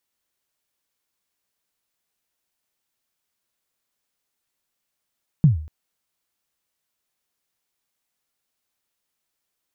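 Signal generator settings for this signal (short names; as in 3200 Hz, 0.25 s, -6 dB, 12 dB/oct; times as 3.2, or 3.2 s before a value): kick drum length 0.24 s, from 170 Hz, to 77 Hz, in 0.133 s, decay 0.47 s, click off, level -7 dB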